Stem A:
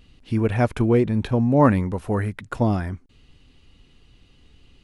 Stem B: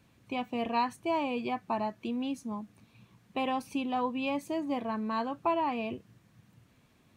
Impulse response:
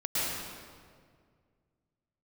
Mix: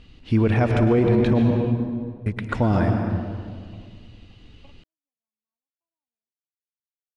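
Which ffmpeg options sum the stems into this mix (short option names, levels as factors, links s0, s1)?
-filter_complex "[0:a]volume=1.26,asplit=3[s0][s1][s2];[s0]atrim=end=1.51,asetpts=PTS-STARTPTS,afade=t=out:st=1.506:d=0.004:c=hsin[s3];[s1]atrim=start=1.51:end=2.26,asetpts=PTS-STARTPTS,volume=0[s4];[s2]atrim=start=2.26,asetpts=PTS-STARTPTS,afade=t=in:d=0.004:c=hsin[s5];[s3][s4][s5]concat=n=3:v=0:a=1,asplit=3[s6][s7][s8];[s7]volume=0.266[s9];[1:a]adelay=350,volume=0.266[s10];[s8]apad=whole_len=331565[s11];[s10][s11]sidechaingate=range=0.00112:threshold=0.00562:ratio=16:detection=peak[s12];[2:a]atrim=start_sample=2205[s13];[s9][s13]afir=irnorm=-1:irlink=0[s14];[s6][s12][s14]amix=inputs=3:normalize=0,lowpass=5600,alimiter=limit=0.299:level=0:latency=1:release=21"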